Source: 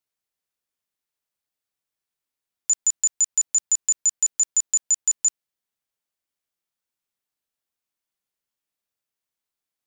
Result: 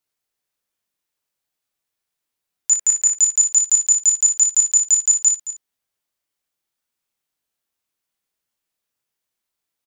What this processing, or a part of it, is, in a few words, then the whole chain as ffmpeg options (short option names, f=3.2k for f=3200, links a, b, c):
slapback doubling: -filter_complex "[0:a]asettb=1/sr,asplit=3[a][b][c];[a]atrim=end=2.724[d];[b]atrim=start=2.72:end=3.17,asetpts=PTS-STARTPTS,afade=t=in:d=0.004:c=qsin,afade=t=out:st=0.446:d=0.004:c=qsin,equalizer=f=500:t=o:w=1:g=5,equalizer=f=2k:t=o:w=1:g=6,equalizer=f=4k:t=o:w=1:g=-6[e];[c]atrim=start=3.166[f];[d][e]acrossfade=d=0.004:c1=hsin:c2=qsin[g];[g][f]acrossfade=d=0.004:c1=qsin:c2=hsin,aecho=1:1:221:0.211,asplit=3[h][i][j];[i]adelay=23,volume=-6dB[k];[j]adelay=61,volume=-9.5dB[l];[h][k][l]amix=inputs=3:normalize=0,volume=3.5dB"